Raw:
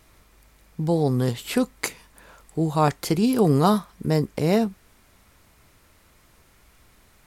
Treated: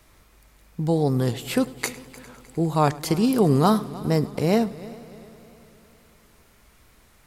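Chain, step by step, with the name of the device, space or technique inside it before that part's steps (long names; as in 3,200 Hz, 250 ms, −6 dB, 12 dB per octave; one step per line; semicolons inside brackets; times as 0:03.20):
multi-head tape echo (echo machine with several playback heads 101 ms, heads first and third, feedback 65%, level −20.5 dB; tape wow and flutter)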